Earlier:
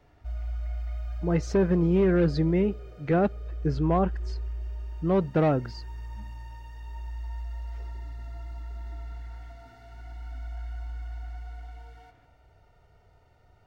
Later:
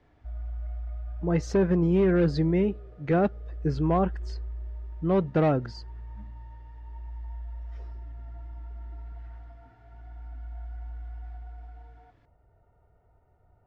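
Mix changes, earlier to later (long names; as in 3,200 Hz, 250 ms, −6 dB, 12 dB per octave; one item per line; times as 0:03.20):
background: add low-pass filter 1,200 Hz 12 dB per octave
reverb: off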